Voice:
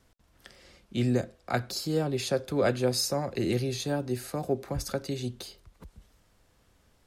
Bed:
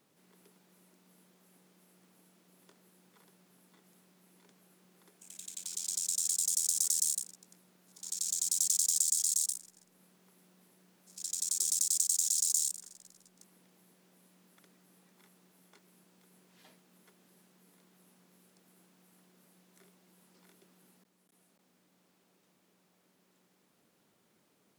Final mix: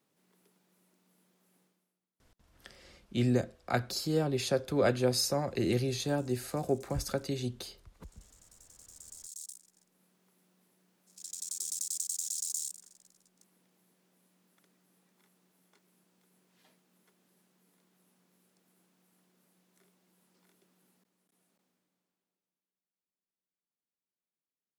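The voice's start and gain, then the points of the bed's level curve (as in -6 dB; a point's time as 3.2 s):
2.20 s, -1.5 dB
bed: 1.63 s -6 dB
2.1 s -29.5 dB
8.72 s -29.5 dB
9.78 s -6 dB
21.58 s -6 dB
22.85 s -32.5 dB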